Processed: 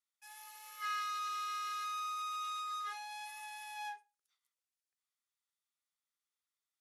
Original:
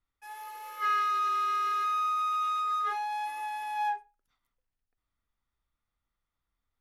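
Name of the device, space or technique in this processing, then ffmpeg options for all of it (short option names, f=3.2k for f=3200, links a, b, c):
piezo pickup straight into a mixer: -af "lowpass=8.7k,aderivative,volume=4dB"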